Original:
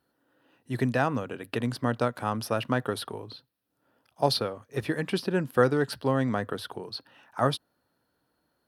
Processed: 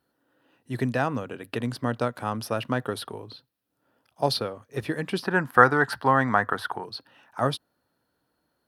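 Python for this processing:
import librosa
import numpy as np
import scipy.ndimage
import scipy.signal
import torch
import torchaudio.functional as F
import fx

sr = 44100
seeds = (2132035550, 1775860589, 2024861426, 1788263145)

y = fx.band_shelf(x, sr, hz=1200.0, db=12.0, octaves=1.7, at=(5.23, 6.85))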